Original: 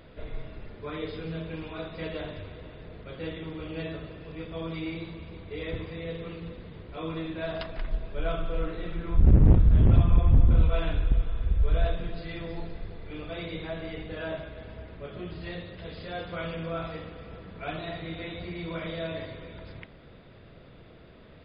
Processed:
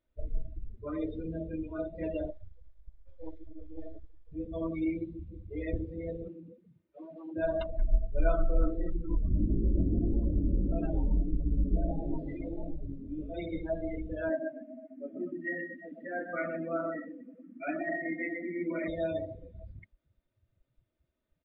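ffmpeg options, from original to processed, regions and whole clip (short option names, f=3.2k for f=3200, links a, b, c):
-filter_complex "[0:a]asettb=1/sr,asplit=3[a][b][c];[a]atrim=end=2.304[d];[b]atrim=start=2.3:end=4.32,asetpts=PTS-STARTPTS,afade=t=in:d=0.004:c=qsin,afade=t=out:st=2.016:d=0.004:c=qsin,aeval=exprs='max(val(0),0)':c=same,equalizer=f=190:t=o:w=0.83:g=-13,bandreject=f=2.7k:w=8[e];[c]atrim=start=4.316[f];[d][e]acrossfade=d=0.004:c1=hsin:c2=qsin[g];[g][f]acrossfade=d=0.004:c1=qsin:c2=hsin,asettb=1/sr,asplit=3[h][i][j];[h]atrim=end=6.284[k];[i]atrim=start=6.28:end=7.36,asetpts=PTS-STARTPTS,afade=t=in:d=0.004:c=qsin,afade=t=out:st=1.076:d=0.004:c=qsin,equalizer=f=780:t=o:w=1.6:g=-4,aeval=exprs='0.015*(abs(mod(val(0)/0.015+3,4)-2)-1)':c=same,highpass=150,lowpass=3k[l];[j]atrim=start=7.356[m];[k][l]acrossfade=d=0.004:c1=hsin:c2=qsin[n];[n][m]acrossfade=d=0.004:c1=qsin:c2=hsin,asettb=1/sr,asplit=3[o][p][q];[o]atrim=end=8.964[r];[p]atrim=start=8.96:end=13.34,asetpts=PTS-STARTPTS,afade=t=in:d=0.004:c=qsin,afade=t=out:st=4.376:d=0.004:c=qsin,acompressor=threshold=-25dB:ratio=10:attack=3.2:release=140:knee=1:detection=peak,asplit=7[s][t][u][v][w][x][y];[t]adelay=131,afreqshift=130,volume=-5dB[z];[u]adelay=262,afreqshift=260,volume=-11dB[aa];[v]adelay=393,afreqshift=390,volume=-17dB[ab];[w]adelay=524,afreqshift=520,volume=-23.1dB[ac];[x]adelay=655,afreqshift=650,volume=-29.1dB[ad];[y]adelay=786,afreqshift=780,volume=-35.1dB[ae];[s][z][aa][ab][ac][ad][ae]amix=inputs=7:normalize=0,atrim=end_sample=193158,flanger=delay=17.5:depth=5.1:speed=1.6[af];[q]atrim=start=13.336[ag];[r][af]acrossfade=d=0.004:c1=hsin:c2=qsin[ah];[ah][ag]acrossfade=d=0.004:c1=qsin:c2=hsin,asettb=1/sr,asplit=3[ai][aj][ak];[ai]atrim=end=14.294[al];[aj]atrim=start=14.29:end=18.88,asetpts=PTS-STARTPTS,afade=t=in:d=0.004:c=qsin,afade=t=out:st=4.586:d=0.004:c=qsin,highpass=f=180:w=0.5412,highpass=f=180:w=1.3066,equalizer=f=180:t=q:w=4:g=-3,equalizer=f=260:t=q:w=4:g=9,equalizer=f=440:t=q:w=4:g=-5,equalizer=f=910:t=q:w=4:g=-4,equalizer=f=1.9k:t=q:w=4:g=8,lowpass=f=2.7k:w=0.5412,lowpass=f=2.7k:w=1.3066,aecho=1:1:127:0.473,atrim=end_sample=202419[am];[ak]atrim=start=18.876[an];[al][am]acrossfade=d=0.004:c1=hsin:c2=qsin[ao];[ao][an]acrossfade=d=0.004:c1=qsin:c2=hsin,afftdn=nr=35:nf=-32,aecho=1:1:3.3:0.58,volume=1dB"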